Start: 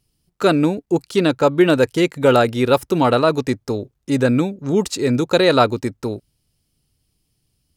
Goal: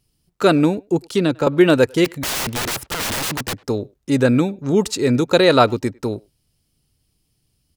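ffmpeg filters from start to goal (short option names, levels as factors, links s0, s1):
-filter_complex "[0:a]asettb=1/sr,asplit=3[s0][s1][s2];[s0]atrim=end=0.814[s3];[s1]atrim=start=0.81:end=1.47,asetpts=PTS-STARTPTS,afade=t=in:d=0.004:c=qsin,afade=t=out:st=0.656:d=0.004:c=qsin,acrossover=split=300[s4][s5];[s5]acompressor=threshold=0.1:ratio=4[s6];[s4][s6]amix=inputs=2:normalize=0[s7];[s2]atrim=start=1.466[s8];[s3][s7]acrossfade=d=0.004:c1=hsin:c2=qsin[s9];[s9][s8]acrossfade=d=0.004:c1=qsin:c2=hsin,asplit=3[s10][s11][s12];[s10]afade=t=out:st=2.04:d=0.02[s13];[s11]aeval=exprs='(mod(9.44*val(0)+1,2)-1)/9.44':c=same,afade=t=in:st=2.04:d=0.02,afade=t=out:st=3.53:d=0.02[s14];[s12]afade=t=in:st=3.53:d=0.02[s15];[s13][s14][s15]amix=inputs=3:normalize=0,asplit=2[s16][s17];[s17]adelay=100,highpass=300,lowpass=3400,asoftclip=type=hard:threshold=0.251,volume=0.0501[s18];[s16][s18]amix=inputs=2:normalize=0,volume=1.12"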